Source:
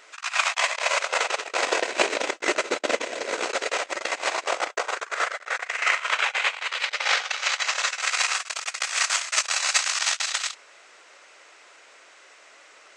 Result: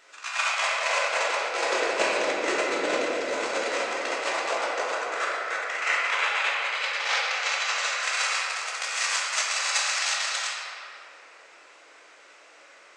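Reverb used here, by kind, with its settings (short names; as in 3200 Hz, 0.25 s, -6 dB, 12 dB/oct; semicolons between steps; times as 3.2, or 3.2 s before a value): shoebox room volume 130 m³, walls hard, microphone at 0.72 m; gain -6.5 dB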